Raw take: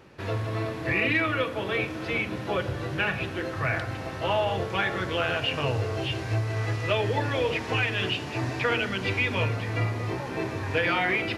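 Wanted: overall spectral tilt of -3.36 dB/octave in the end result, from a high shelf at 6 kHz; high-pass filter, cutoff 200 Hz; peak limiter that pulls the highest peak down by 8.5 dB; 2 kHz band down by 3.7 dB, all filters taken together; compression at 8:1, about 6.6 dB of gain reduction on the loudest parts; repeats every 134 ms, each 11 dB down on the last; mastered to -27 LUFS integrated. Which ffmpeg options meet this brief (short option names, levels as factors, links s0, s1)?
-af "highpass=200,equalizer=f=2000:t=o:g=-4,highshelf=f=6000:g=-5.5,acompressor=threshold=0.0355:ratio=8,alimiter=level_in=1.41:limit=0.0631:level=0:latency=1,volume=0.708,aecho=1:1:134|268|402:0.282|0.0789|0.0221,volume=2.66"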